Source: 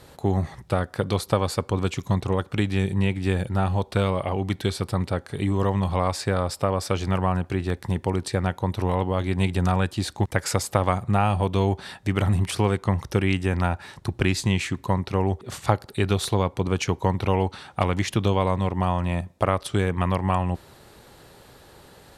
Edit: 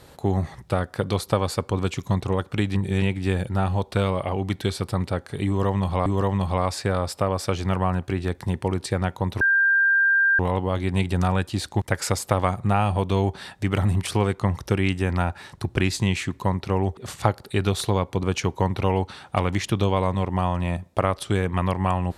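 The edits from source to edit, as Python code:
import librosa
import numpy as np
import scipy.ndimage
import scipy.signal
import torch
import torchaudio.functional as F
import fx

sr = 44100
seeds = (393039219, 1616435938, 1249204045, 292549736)

y = fx.edit(x, sr, fx.reverse_span(start_s=2.75, length_s=0.27),
    fx.repeat(start_s=5.48, length_s=0.58, count=2),
    fx.insert_tone(at_s=8.83, length_s=0.98, hz=1590.0, db=-15.5), tone=tone)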